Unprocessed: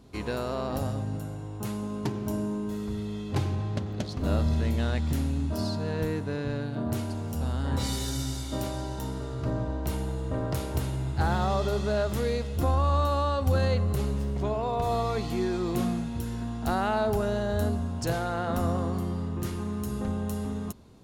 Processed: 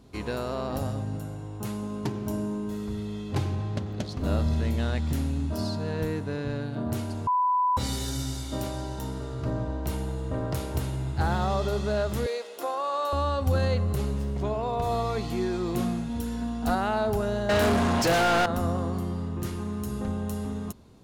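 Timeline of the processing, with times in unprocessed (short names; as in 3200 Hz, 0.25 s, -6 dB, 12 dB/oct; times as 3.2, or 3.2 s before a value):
7.27–7.77 bleep 996 Hz -20.5 dBFS
12.26–13.13 HPF 400 Hz 24 dB/oct
16.09–16.75 comb 4.1 ms
17.49–18.46 overdrive pedal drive 33 dB, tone 3800 Hz, clips at -15.5 dBFS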